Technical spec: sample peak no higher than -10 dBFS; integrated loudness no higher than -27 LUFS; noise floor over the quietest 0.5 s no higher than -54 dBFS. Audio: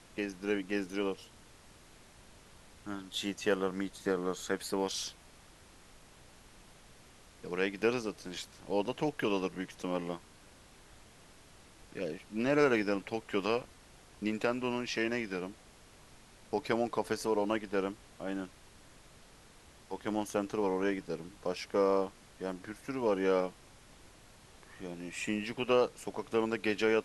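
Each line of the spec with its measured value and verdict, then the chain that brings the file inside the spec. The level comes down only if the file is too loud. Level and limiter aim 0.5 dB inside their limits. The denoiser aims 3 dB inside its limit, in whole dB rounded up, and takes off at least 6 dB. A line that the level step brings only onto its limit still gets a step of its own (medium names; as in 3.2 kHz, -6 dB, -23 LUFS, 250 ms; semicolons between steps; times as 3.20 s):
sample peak -14.0 dBFS: pass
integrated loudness -34.5 LUFS: pass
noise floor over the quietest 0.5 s -58 dBFS: pass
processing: none needed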